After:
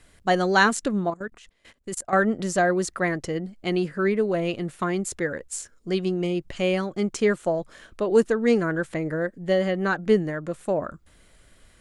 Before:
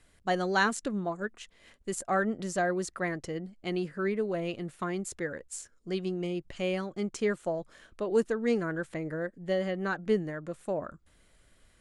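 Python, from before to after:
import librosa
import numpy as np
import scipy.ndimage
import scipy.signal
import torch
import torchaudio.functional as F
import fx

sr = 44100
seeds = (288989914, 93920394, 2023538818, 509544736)

y = fx.level_steps(x, sr, step_db=19, at=(1.1, 2.13))
y = F.gain(torch.from_numpy(y), 7.5).numpy()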